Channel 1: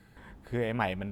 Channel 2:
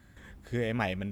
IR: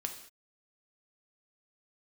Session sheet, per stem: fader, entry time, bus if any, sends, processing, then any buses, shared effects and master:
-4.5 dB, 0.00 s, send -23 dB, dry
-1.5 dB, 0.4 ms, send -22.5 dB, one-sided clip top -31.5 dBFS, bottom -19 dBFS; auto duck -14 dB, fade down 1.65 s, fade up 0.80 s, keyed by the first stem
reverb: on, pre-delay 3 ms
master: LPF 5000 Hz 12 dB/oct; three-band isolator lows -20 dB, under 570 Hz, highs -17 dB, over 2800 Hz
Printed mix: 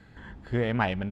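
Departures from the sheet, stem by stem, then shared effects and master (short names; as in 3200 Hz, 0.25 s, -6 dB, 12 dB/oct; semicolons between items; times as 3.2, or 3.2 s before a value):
stem 1 -4.5 dB -> +3.0 dB; master: missing three-band isolator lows -20 dB, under 570 Hz, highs -17 dB, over 2800 Hz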